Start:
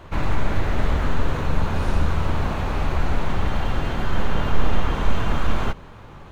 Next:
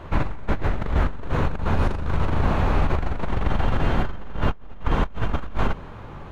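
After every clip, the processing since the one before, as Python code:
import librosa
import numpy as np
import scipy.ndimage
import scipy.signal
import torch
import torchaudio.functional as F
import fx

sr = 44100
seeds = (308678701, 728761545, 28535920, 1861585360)

y = fx.high_shelf(x, sr, hz=3500.0, db=-9.5)
y = fx.over_compress(y, sr, threshold_db=-20.0, ratio=-0.5)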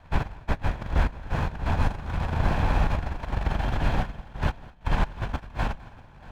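y = fx.lower_of_two(x, sr, delay_ms=1.2)
y = fx.echo_multitap(y, sr, ms=(207, 636), db=(-15.5, -14.5))
y = fx.upward_expand(y, sr, threshold_db=-39.0, expansion=1.5)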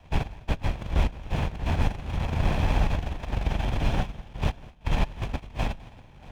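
y = fx.lower_of_two(x, sr, delay_ms=0.32)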